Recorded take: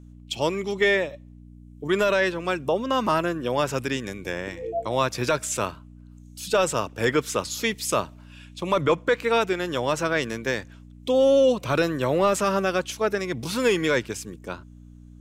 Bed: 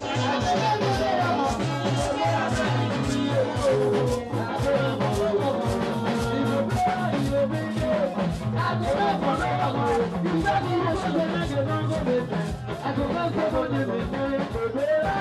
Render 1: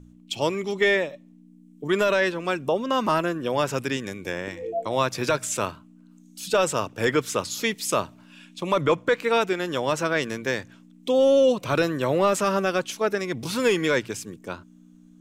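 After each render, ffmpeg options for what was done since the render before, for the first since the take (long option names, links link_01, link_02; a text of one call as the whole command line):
ffmpeg -i in.wav -af "bandreject=frequency=60:width_type=h:width=4,bandreject=frequency=120:width_type=h:width=4" out.wav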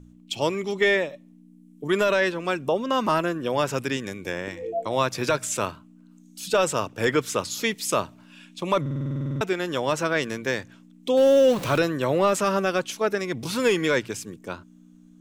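ffmpeg -i in.wav -filter_complex "[0:a]asettb=1/sr,asplit=3[link_01][link_02][link_03];[link_01]atrim=end=1.114[link_04];[link_02]atrim=start=1.11:end=1.98,asetpts=PTS-STARTPTS,afade=type=in:duration=0.004:curve=qsin,afade=type=out:start_time=0.866:duration=0.004:curve=qsin,equalizer=frequency=11000:width_type=o:width=0.32:gain=6.5[link_05];[link_03]atrim=start=1.976[link_06];[link_04][link_05]acrossfade=duration=0.004:curve1=hsin:curve2=qsin[link_07];[link_07][link_06]acrossfade=duration=0.004:curve1=qsin:curve2=hsin,asettb=1/sr,asplit=3[link_08][link_09][link_10];[link_08]atrim=end=11.174[link_11];[link_09]atrim=start=11.17:end=11.78,asetpts=PTS-STARTPTS,afade=type=in:duration=0.004:curve=qsin,afade=type=out:start_time=0.606:duration=0.004:curve=qsin,aeval=exprs='val(0)+0.5*0.0335*sgn(val(0))':channel_layout=same[link_12];[link_10]atrim=start=11.776[link_13];[link_11][link_12]acrossfade=duration=0.004:curve1=hsin:curve2=qsin[link_14];[link_14][link_13]acrossfade=duration=0.004:curve1=qsin:curve2=hsin,asplit=13[link_15][link_16][link_17][link_18][link_19][link_20][link_21][link_22][link_23][link_24][link_25][link_26][link_27];[link_15]atrim=end=8.862[link_28];[link_16]atrim=start=8.808:end=8.862[link_29];[link_17]atrim=start=8.808:end=8.862[link_30];[link_18]atrim=start=8.808:end=8.862[link_31];[link_19]atrim=start=8.808:end=8.862[link_32];[link_20]atrim=start=8.808:end=8.862[link_33];[link_21]atrim=start=8.808:end=8.862[link_34];[link_22]atrim=start=8.808:end=8.862[link_35];[link_23]atrim=start=8.808:end=8.862[link_36];[link_24]atrim=start=8.808:end=8.862[link_37];[link_25]atrim=start=8.808:end=8.862[link_38];[link_26]atrim=start=8.808:end=8.862[link_39];[link_27]atrim=start=9.408[link_40];[link_28][link_29]acrossfade=duration=0.004:curve1=hsin:curve2=hsin[link_41];[link_41][link_30]acrossfade=duration=0.004:curve1=hsin:curve2=hsin[link_42];[link_42][link_31]acrossfade=duration=0.004:curve1=hsin:curve2=hsin[link_43];[link_43][link_32]acrossfade=duration=0.004:curve1=hsin:curve2=hsin[link_44];[link_44][link_33]acrossfade=duration=0.004:curve1=hsin:curve2=hsin[link_45];[link_45][link_34]acrossfade=duration=0.004:curve1=hsin:curve2=hsin[link_46];[link_46][link_35]acrossfade=duration=0.004:curve1=hsin:curve2=hsin[link_47];[link_47][link_36]acrossfade=duration=0.004:curve1=hsin:curve2=hsin[link_48];[link_48][link_37]acrossfade=duration=0.004:curve1=hsin:curve2=hsin[link_49];[link_49][link_38]acrossfade=duration=0.004:curve1=hsin:curve2=hsin[link_50];[link_50][link_39]acrossfade=duration=0.004:curve1=hsin:curve2=hsin[link_51];[link_51][link_40]acrossfade=duration=0.004:curve1=hsin:curve2=hsin" out.wav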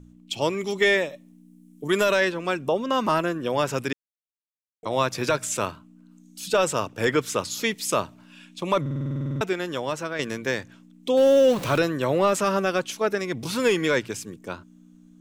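ffmpeg -i in.wav -filter_complex "[0:a]asettb=1/sr,asplit=3[link_01][link_02][link_03];[link_01]atrim=end=0.604[link_04];[link_02]atrim=start=0.6:end=2.25,asetpts=PTS-STARTPTS,afade=type=in:duration=0.004:curve=qsin,afade=type=out:start_time=1.646:duration=0.004:curve=qsin,highshelf=frequency=5100:gain=8.5[link_05];[link_03]atrim=start=2.246[link_06];[link_04][link_05]acrossfade=duration=0.004:curve1=hsin:curve2=qsin[link_07];[link_07][link_06]acrossfade=duration=0.004:curve1=qsin:curve2=hsin,asplit=4[link_08][link_09][link_10][link_11];[link_08]atrim=end=3.93,asetpts=PTS-STARTPTS,afade=type=out:start_time=3.926:duration=0.004:curve=hsin[link_12];[link_09]atrim=start=3.93:end=4.83,asetpts=PTS-STARTPTS,volume=0[link_13];[link_10]atrim=start=4.83:end=10.19,asetpts=PTS-STARTPTS,afade=type=in:duration=0.004:curve=hsin,afade=type=out:start_time=4.6:duration=0.76:silence=0.398107[link_14];[link_11]atrim=start=10.19,asetpts=PTS-STARTPTS,afade=type=in:duration=0.004:curve=hsin:silence=0.398107[link_15];[link_12][link_13][link_14][link_15]concat=n=4:v=0:a=1" out.wav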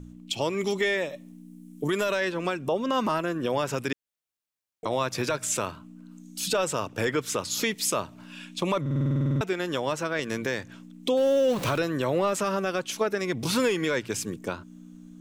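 ffmpeg -i in.wav -filter_complex "[0:a]asplit=2[link_01][link_02];[link_02]acompressor=threshold=-31dB:ratio=6,volume=-1.5dB[link_03];[link_01][link_03]amix=inputs=2:normalize=0,alimiter=limit=-16dB:level=0:latency=1:release=226" out.wav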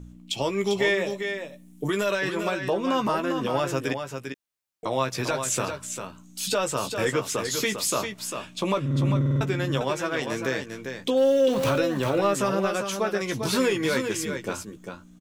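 ffmpeg -i in.wav -filter_complex "[0:a]asplit=2[link_01][link_02];[link_02]adelay=15,volume=-7dB[link_03];[link_01][link_03]amix=inputs=2:normalize=0,asplit=2[link_04][link_05];[link_05]aecho=0:1:398:0.447[link_06];[link_04][link_06]amix=inputs=2:normalize=0" out.wav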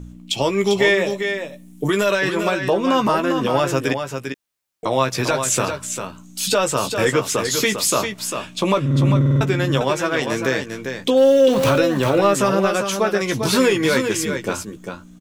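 ffmpeg -i in.wav -af "volume=7dB" out.wav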